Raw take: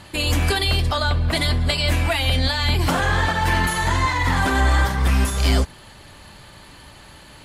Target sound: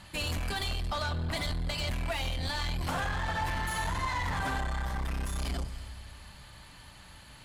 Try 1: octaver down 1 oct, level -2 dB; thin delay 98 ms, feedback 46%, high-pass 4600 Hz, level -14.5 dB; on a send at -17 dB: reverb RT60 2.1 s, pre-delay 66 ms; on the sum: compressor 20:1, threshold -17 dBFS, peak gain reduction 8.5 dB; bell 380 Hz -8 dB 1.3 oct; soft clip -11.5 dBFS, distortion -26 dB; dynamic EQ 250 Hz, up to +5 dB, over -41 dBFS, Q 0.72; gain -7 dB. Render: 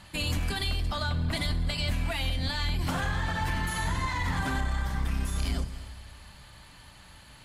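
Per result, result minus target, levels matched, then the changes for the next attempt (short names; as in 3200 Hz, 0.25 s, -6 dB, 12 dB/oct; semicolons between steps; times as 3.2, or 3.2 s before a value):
soft clip: distortion -14 dB; 250 Hz band +2.0 dB
change: soft clip -21.5 dBFS, distortion -12 dB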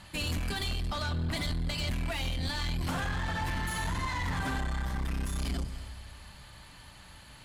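250 Hz band +3.5 dB
change: dynamic EQ 660 Hz, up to +5 dB, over -41 dBFS, Q 0.72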